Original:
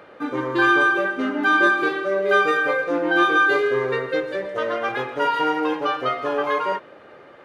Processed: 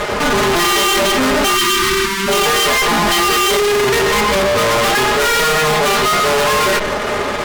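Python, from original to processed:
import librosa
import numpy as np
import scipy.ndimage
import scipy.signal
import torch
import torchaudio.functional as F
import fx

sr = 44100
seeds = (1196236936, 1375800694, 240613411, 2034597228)

y = fx.lower_of_two(x, sr, delay_ms=4.8)
y = fx.fuzz(y, sr, gain_db=46.0, gate_db=-55.0)
y = fx.spec_erase(y, sr, start_s=1.55, length_s=0.73, low_hz=390.0, high_hz=880.0)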